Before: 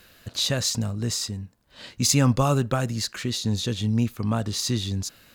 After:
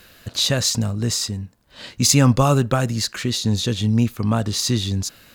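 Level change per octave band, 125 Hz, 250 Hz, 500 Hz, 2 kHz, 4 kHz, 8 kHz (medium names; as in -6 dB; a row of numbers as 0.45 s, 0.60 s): +5.0 dB, +5.0 dB, +5.0 dB, +5.0 dB, +5.0 dB, +5.0 dB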